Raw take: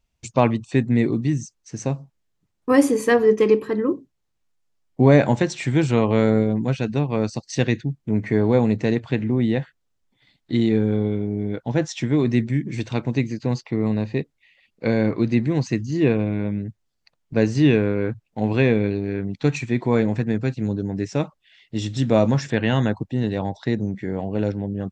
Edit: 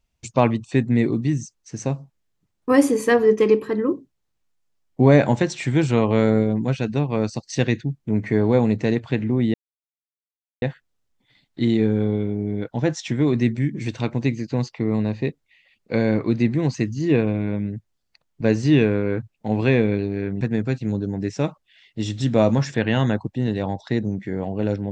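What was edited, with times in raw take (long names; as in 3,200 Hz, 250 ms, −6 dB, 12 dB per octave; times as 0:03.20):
0:09.54: splice in silence 1.08 s
0:19.33–0:20.17: remove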